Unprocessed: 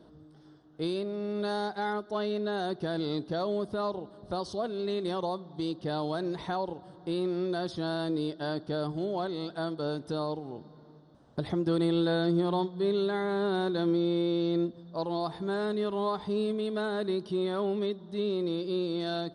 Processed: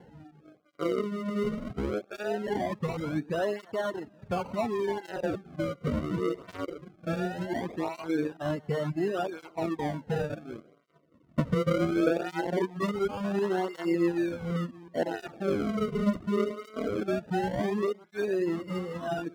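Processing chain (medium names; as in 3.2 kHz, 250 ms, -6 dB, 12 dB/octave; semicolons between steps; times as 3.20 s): chunks repeated in reverse 186 ms, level -13 dB; reverb removal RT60 1.4 s; 12.79–13.20 s: transient shaper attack +4 dB, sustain -10 dB; decimation with a swept rate 36×, swing 100% 0.2 Hz; low-pass 1.2 kHz 6 dB/octave; cancelling through-zero flanger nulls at 0.69 Hz, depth 3.3 ms; trim +7 dB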